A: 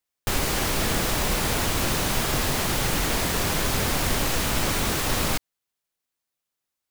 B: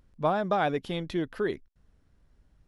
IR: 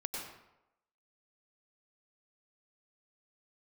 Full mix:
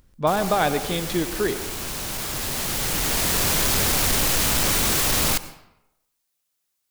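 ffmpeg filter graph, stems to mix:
-filter_complex "[0:a]asoftclip=type=tanh:threshold=-18.5dB,volume=0.5dB,asplit=2[link_01][link_02];[link_02]volume=-13dB[link_03];[1:a]volume=2.5dB,asplit=3[link_04][link_05][link_06];[link_05]volume=-9dB[link_07];[link_06]apad=whole_len=304686[link_08];[link_01][link_08]sidechaincompress=threshold=-45dB:ratio=4:attack=16:release=1250[link_09];[2:a]atrim=start_sample=2205[link_10];[link_03][link_07]amix=inputs=2:normalize=0[link_11];[link_11][link_10]afir=irnorm=-1:irlink=0[link_12];[link_09][link_04][link_12]amix=inputs=3:normalize=0,highshelf=frequency=3500:gain=8"

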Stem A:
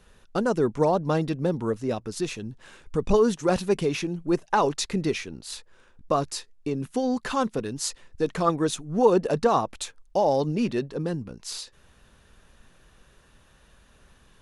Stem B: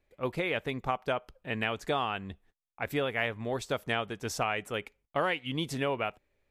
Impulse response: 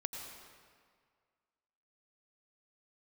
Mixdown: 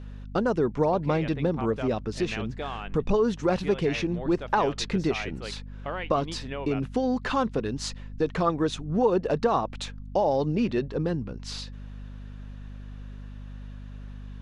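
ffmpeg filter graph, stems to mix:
-filter_complex "[0:a]aeval=exprs='val(0)+0.00891*(sin(2*PI*50*n/s)+sin(2*PI*2*50*n/s)/2+sin(2*PI*3*50*n/s)/3+sin(2*PI*4*50*n/s)/4+sin(2*PI*5*50*n/s)/5)':channel_layout=same,volume=2.5dB[link_01];[1:a]acontrast=37,adelay=700,volume=-10dB[link_02];[link_01][link_02]amix=inputs=2:normalize=0,lowpass=4300,acompressor=threshold=-23dB:ratio=2"

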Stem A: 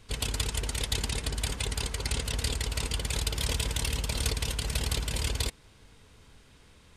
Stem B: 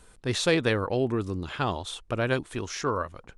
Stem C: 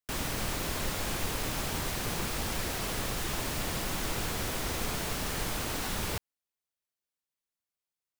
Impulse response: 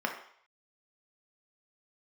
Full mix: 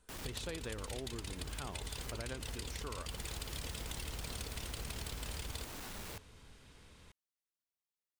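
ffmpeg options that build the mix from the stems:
-filter_complex "[0:a]acompressor=threshold=-35dB:ratio=6,adelay=150,volume=-2.5dB[link_01];[1:a]volume=-15dB,asplit=2[link_02][link_03];[2:a]asoftclip=type=tanh:threshold=-37dB,volume=-6.5dB[link_04];[link_03]apad=whole_len=361611[link_05];[link_04][link_05]sidechaincompress=threshold=-53dB:ratio=8:attack=6.1:release=113[link_06];[link_01][link_02][link_06]amix=inputs=3:normalize=0,acompressor=threshold=-38dB:ratio=6"

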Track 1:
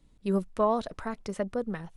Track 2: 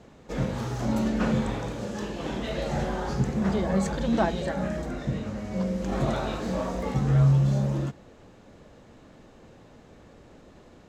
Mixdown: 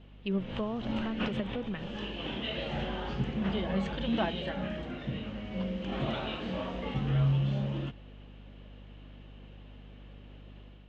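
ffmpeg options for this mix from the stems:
ffmpeg -i stem1.wav -i stem2.wav -filter_complex "[0:a]acrossover=split=350[link_01][link_02];[link_02]acompressor=threshold=-39dB:ratio=6[link_03];[link_01][link_03]amix=inputs=2:normalize=0,volume=-5.5dB,asplit=2[link_04][link_05];[1:a]equalizer=frequency=250:width_type=o:width=0.77:gain=2.5,aeval=exprs='val(0)+0.00891*(sin(2*PI*50*n/s)+sin(2*PI*2*50*n/s)/2+sin(2*PI*3*50*n/s)/3+sin(2*PI*4*50*n/s)/4+sin(2*PI*5*50*n/s)/5)':channel_layout=same,volume=-11.5dB[link_06];[link_05]apad=whole_len=479901[link_07];[link_06][link_07]sidechaincompress=threshold=-45dB:ratio=6:attack=16:release=146[link_08];[link_04][link_08]amix=inputs=2:normalize=0,dynaudnorm=framelen=120:gausssize=5:maxgain=4dB,lowpass=frequency=3000:width_type=q:width=6.1" out.wav

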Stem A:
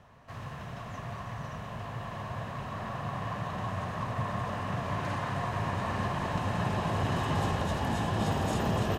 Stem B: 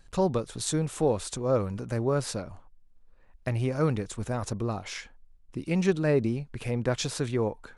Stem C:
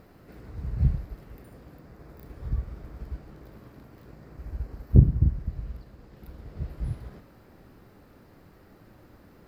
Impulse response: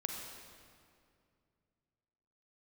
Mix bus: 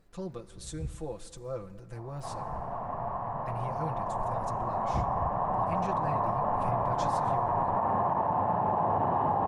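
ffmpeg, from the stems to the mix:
-filter_complex "[0:a]lowpass=frequency=860:width_type=q:width=3.7,lowshelf=frequency=130:gain=-11.5,adelay=1950,volume=2.5dB[link_01];[1:a]aecho=1:1:5.9:0.81,asubboost=boost=8:cutoff=85,volume=-16.5dB,asplit=2[link_02][link_03];[link_03]volume=-12.5dB[link_04];[2:a]asoftclip=type=hard:threshold=-8dB,volume=-15.5dB[link_05];[3:a]atrim=start_sample=2205[link_06];[link_04][link_06]afir=irnorm=-1:irlink=0[link_07];[link_01][link_02][link_05][link_07]amix=inputs=4:normalize=0,alimiter=limit=-19dB:level=0:latency=1:release=69"

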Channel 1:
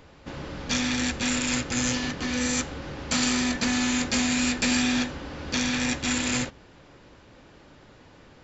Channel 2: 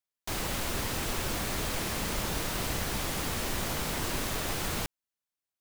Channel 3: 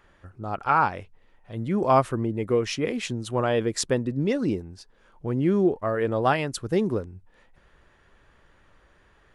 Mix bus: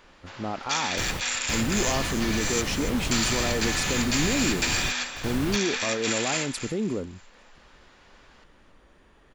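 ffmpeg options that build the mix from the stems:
ffmpeg -i stem1.wav -i stem2.wav -i stem3.wav -filter_complex "[0:a]highpass=840,volume=0dB,asplit=2[link_01][link_02];[link_02]volume=-10.5dB[link_03];[1:a]bass=frequency=250:gain=5,treble=frequency=4000:gain=-6,adelay=700,volume=-0.5dB[link_04];[2:a]equalizer=frequency=100:width_type=o:width=0.67:gain=-6,equalizer=frequency=250:width_type=o:width=0.67:gain=6,equalizer=frequency=1600:width_type=o:width=0.67:gain=-5,alimiter=limit=-23.5dB:level=0:latency=1,volume=2.5dB,asplit=2[link_05][link_06];[link_06]apad=whole_len=278047[link_07];[link_04][link_07]sidechaingate=range=-24dB:threshold=-49dB:ratio=16:detection=peak[link_08];[link_03]aecho=0:1:279|558|837|1116|1395:1|0.32|0.102|0.0328|0.0105[link_09];[link_01][link_08][link_05][link_09]amix=inputs=4:normalize=0" out.wav

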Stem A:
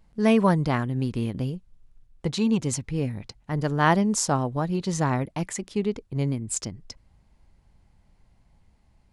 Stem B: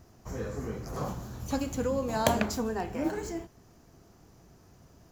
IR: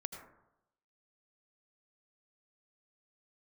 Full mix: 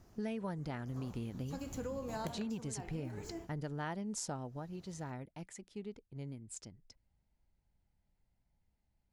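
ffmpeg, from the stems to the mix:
-filter_complex "[0:a]bandreject=frequency=1100:width=6.9,volume=-8dB,afade=type=out:start_time=4.27:duration=0.38:silence=0.298538,asplit=2[link_01][link_02];[1:a]volume=-6.5dB[link_03];[link_02]apad=whole_len=225507[link_04];[link_03][link_04]sidechaincompress=threshold=-33dB:ratio=8:attack=5.9:release=876[link_05];[link_01][link_05]amix=inputs=2:normalize=0,acompressor=threshold=-37dB:ratio=6"

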